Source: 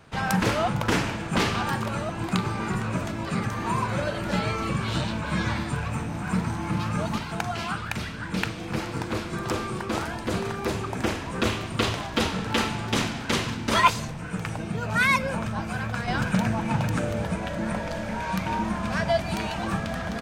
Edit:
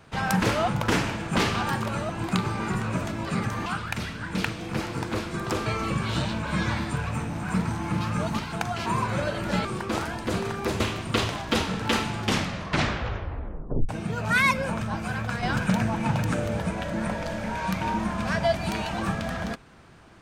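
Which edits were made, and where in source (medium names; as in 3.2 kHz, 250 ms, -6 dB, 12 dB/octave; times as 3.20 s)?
3.66–4.45 s: swap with 7.65–9.65 s
10.80–11.45 s: delete
12.84 s: tape stop 1.70 s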